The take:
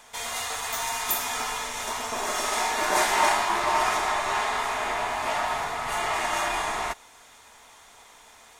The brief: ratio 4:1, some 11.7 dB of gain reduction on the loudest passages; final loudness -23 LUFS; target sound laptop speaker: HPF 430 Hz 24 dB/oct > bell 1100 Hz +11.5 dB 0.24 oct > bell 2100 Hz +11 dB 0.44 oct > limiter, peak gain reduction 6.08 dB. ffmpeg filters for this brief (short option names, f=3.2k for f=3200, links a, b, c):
-af "acompressor=threshold=-32dB:ratio=4,highpass=f=430:w=0.5412,highpass=f=430:w=1.3066,equalizer=f=1.1k:t=o:w=0.24:g=11.5,equalizer=f=2.1k:t=o:w=0.44:g=11,volume=6.5dB,alimiter=limit=-14.5dB:level=0:latency=1"